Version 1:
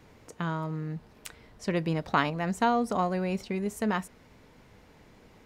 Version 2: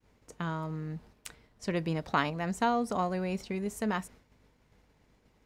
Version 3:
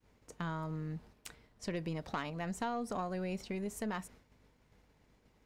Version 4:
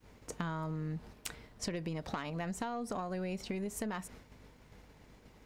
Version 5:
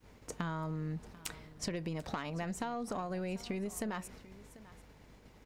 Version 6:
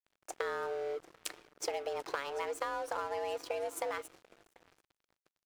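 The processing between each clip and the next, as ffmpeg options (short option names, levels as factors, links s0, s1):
-af "aeval=exprs='val(0)+0.00126*(sin(2*PI*50*n/s)+sin(2*PI*2*50*n/s)/2+sin(2*PI*3*50*n/s)/3+sin(2*PI*4*50*n/s)/4+sin(2*PI*5*50*n/s)/5)':c=same,agate=range=0.0224:threshold=0.00501:ratio=3:detection=peak,equalizer=f=7500:t=o:w=1.6:g=2.5,volume=0.708"
-af "acompressor=threshold=0.0251:ratio=3,aeval=exprs='(tanh(17.8*val(0)+0.25)-tanh(0.25))/17.8':c=same,volume=0.841"
-af "acompressor=threshold=0.00562:ratio=6,volume=2.99"
-af "aecho=1:1:741:0.112"
-af "afreqshift=280,aresample=32000,aresample=44100,aeval=exprs='sgn(val(0))*max(abs(val(0))-0.00316,0)':c=same,volume=1.33"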